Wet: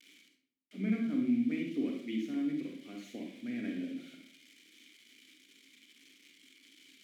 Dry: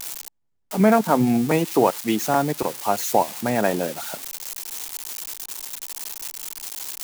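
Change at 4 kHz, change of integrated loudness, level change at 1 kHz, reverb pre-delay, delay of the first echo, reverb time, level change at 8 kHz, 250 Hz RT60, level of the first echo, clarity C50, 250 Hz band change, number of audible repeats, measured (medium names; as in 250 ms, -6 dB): -18.5 dB, -12.0 dB, -37.5 dB, 33 ms, no echo, 0.65 s, under -30 dB, 0.70 s, no echo, 3.5 dB, -10.0 dB, no echo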